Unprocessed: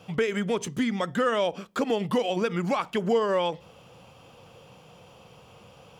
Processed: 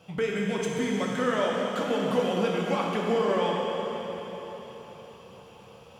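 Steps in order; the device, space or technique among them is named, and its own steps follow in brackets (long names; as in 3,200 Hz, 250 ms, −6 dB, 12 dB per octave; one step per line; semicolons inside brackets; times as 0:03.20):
cathedral (convolution reverb RT60 4.5 s, pre-delay 4 ms, DRR −3.5 dB)
level −5 dB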